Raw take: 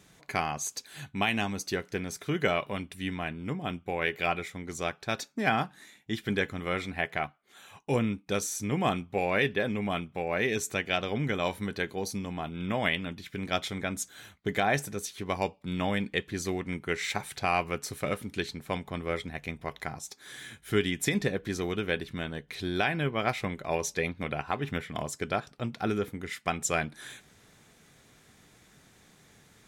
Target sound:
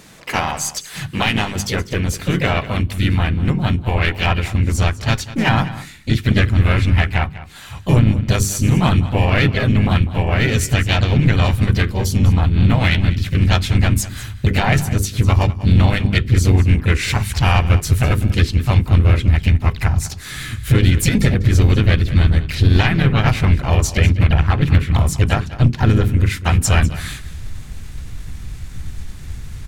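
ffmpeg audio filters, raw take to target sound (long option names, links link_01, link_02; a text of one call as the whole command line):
ffmpeg -i in.wav -filter_complex "[0:a]asubboost=boost=8.5:cutoff=56,bandreject=frequency=50:width_type=h:width=6,bandreject=frequency=100:width_type=h:width=6,bandreject=frequency=150:width_type=h:width=6,bandreject=frequency=200:width_type=h:width=6,bandreject=frequency=250:width_type=h:width=6,bandreject=frequency=300:width_type=h:width=6,bandreject=frequency=350:width_type=h:width=6,bandreject=frequency=400:width_type=h:width=6,asplit=4[link_01][link_02][link_03][link_04];[link_02]asetrate=33038,aresample=44100,atempo=1.33484,volume=-9dB[link_05];[link_03]asetrate=52444,aresample=44100,atempo=0.840896,volume=-6dB[link_06];[link_04]asetrate=55563,aresample=44100,atempo=0.793701,volume=-8dB[link_07];[link_01][link_05][link_06][link_07]amix=inputs=4:normalize=0,asplit=2[link_08][link_09];[link_09]acompressor=threshold=-37dB:ratio=6,volume=2dB[link_10];[link_08][link_10]amix=inputs=2:normalize=0,asubboost=boost=7:cutoff=180,aeval=exprs='0.631*(cos(1*acos(clip(val(0)/0.631,-1,1)))-cos(1*PI/2))+0.0224*(cos(8*acos(clip(val(0)/0.631,-1,1)))-cos(8*PI/2))':channel_layout=same,asplit=2[link_11][link_12];[link_12]aecho=0:1:198:0.158[link_13];[link_11][link_13]amix=inputs=2:normalize=0,alimiter=level_in=8.5dB:limit=-1dB:release=50:level=0:latency=1,volume=-2.5dB" out.wav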